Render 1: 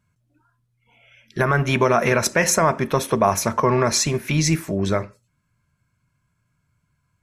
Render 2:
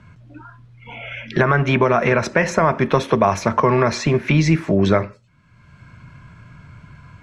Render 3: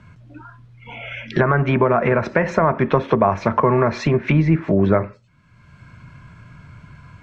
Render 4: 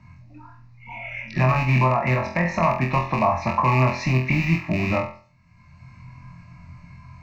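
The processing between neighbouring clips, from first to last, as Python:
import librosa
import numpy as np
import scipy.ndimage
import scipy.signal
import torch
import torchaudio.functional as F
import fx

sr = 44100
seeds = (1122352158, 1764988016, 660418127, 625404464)

y1 = fx.rider(x, sr, range_db=10, speed_s=0.5)
y1 = scipy.signal.sosfilt(scipy.signal.butter(2, 3300.0, 'lowpass', fs=sr, output='sos'), y1)
y1 = fx.band_squash(y1, sr, depth_pct=70)
y1 = F.gain(torch.from_numpy(y1), 3.0).numpy()
y2 = fx.env_lowpass_down(y1, sr, base_hz=1600.0, full_db=-12.5)
y3 = fx.rattle_buzz(y2, sr, strikes_db=-18.0, level_db=-14.0)
y3 = fx.fixed_phaser(y3, sr, hz=2200.0, stages=8)
y3 = fx.room_flutter(y3, sr, wall_m=4.0, rt60_s=0.41)
y3 = F.gain(torch.from_numpy(y3), -2.5).numpy()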